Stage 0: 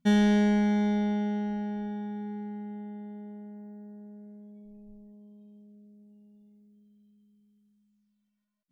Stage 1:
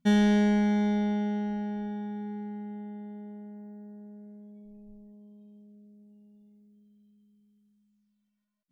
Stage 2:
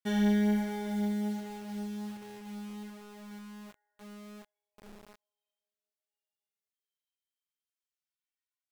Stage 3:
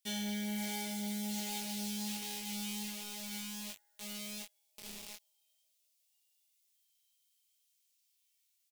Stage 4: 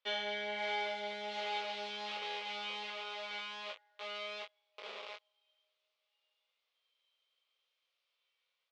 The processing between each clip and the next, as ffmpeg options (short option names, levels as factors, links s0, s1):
-af anull
-filter_complex "[0:a]flanger=delay=7.3:depth=2.9:regen=16:speed=1.3:shape=sinusoidal,acrossover=split=1100[s0][s1];[s0]acrusher=bits=7:mix=0:aa=0.000001[s2];[s2][s1]amix=inputs=2:normalize=0,volume=0.75"
-af "areverse,acompressor=threshold=0.0126:ratio=4,areverse,aexciter=amount=5.3:drive=7.1:freq=2200,aecho=1:1:18|29:0.596|0.316,volume=0.668"
-af "highpass=f=460:w=0.5412,highpass=f=460:w=1.3066,equalizer=f=520:t=q:w=4:g=8,equalizer=f=790:t=q:w=4:g=-3,equalizer=f=1200:t=q:w=4:g=6,equalizer=f=1800:t=q:w=4:g=-4,equalizer=f=2700:t=q:w=4:g=-4,lowpass=f=3100:w=0.5412,lowpass=f=3100:w=1.3066,volume=2.99"